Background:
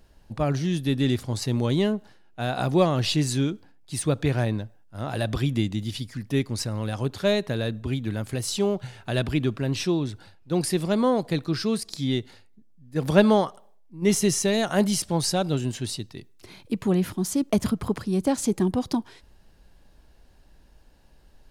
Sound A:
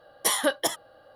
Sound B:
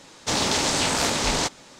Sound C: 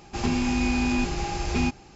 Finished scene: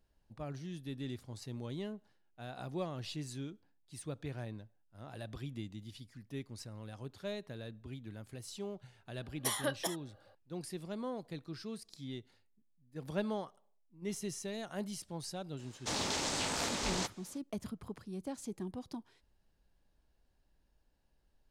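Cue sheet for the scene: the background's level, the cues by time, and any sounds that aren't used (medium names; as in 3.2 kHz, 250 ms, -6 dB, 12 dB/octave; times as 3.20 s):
background -18.5 dB
9.20 s: add A -11 dB
15.59 s: add B -12.5 dB
not used: C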